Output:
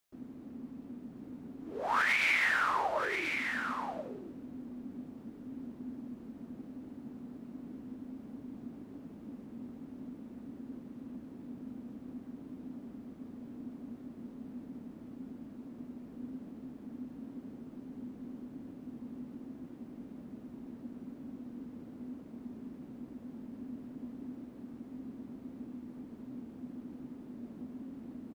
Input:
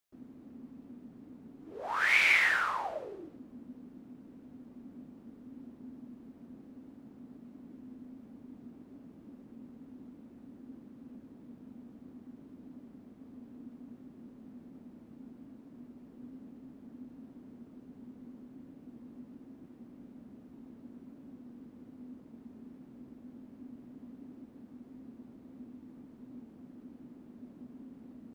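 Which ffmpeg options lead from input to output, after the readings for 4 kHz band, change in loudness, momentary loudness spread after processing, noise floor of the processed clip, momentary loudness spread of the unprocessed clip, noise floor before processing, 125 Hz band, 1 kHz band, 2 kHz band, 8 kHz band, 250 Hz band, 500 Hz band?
-2.0 dB, -12.0 dB, 15 LU, -51 dBFS, 23 LU, -56 dBFS, +4.5 dB, +3.0 dB, -2.0 dB, n/a, +5.0 dB, +4.5 dB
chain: -af "alimiter=limit=-23.5dB:level=0:latency=1:release=302,aecho=1:1:1033:0.473,volume=4dB"

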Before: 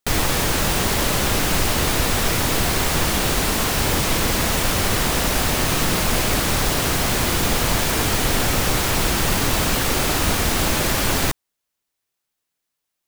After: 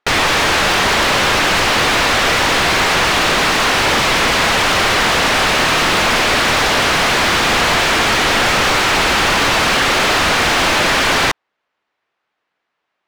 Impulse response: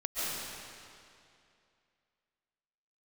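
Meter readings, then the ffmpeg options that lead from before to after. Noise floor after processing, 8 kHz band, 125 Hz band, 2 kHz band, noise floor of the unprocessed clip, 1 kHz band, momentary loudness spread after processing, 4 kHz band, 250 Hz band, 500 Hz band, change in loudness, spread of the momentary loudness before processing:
-75 dBFS, +1.5 dB, -2.0 dB, +11.5 dB, -80 dBFS, +10.0 dB, 0 LU, +9.0 dB, +2.0 dB, +6.5 dB, +6.5 dB, 0 LU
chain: -filter_complex "[0:a]tiltshelf=f=1.4k:g=-4,adynamicsmooth=sensitivity=3.5:basefreq=1.8k,asplit=2[a][b];[b]highpass=f=720:p=1,volume=24dB,asoftclip=type=tanh:threshold=-7.5dB[c];[a][c]amix=inputs=2:normalize=0,lowpass=f=2.2k:p=1,volume=-6dB,volume=3.5dB"

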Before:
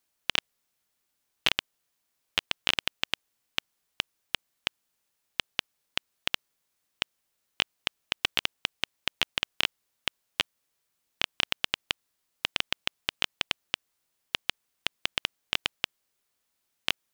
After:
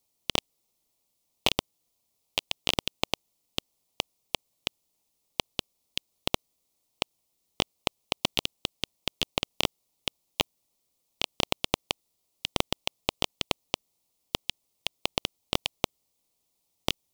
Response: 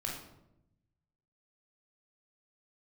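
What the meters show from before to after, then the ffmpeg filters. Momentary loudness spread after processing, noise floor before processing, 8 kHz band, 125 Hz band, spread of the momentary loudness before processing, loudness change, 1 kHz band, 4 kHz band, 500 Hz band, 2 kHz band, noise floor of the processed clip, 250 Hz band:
8 LU, -79 dBFS, +4.0 dB, +9.0 dB, 7 LU, -0.5 dB, +4.0 dB, -1.0 dB, +9.0 dB, -4.5 dB, -77 dBFS, +9.0 dB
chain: -filter_complex "[0:a]highpass=710,acrossover=split=2700[a][b];[a]acrusher=samples=26:mix=1:aa=0.000001[c];[c][b]amix=inputs=2:normalize=0,volume=2.5dB"

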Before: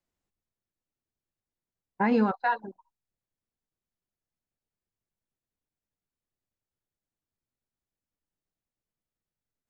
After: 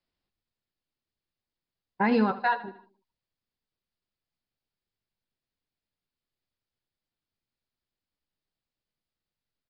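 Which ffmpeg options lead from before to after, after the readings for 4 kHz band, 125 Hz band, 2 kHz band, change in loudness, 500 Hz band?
+5.5 dB, 0.0 dB, +2.0 dB, +0.5 dB, +0.5 dB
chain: -af "highshelf=f=3.6k:g=10.5,aecho=1:1:77|154|231|308:0.168|0.0739|0.0325|0.0143,aresample=11025,aresample=44100"

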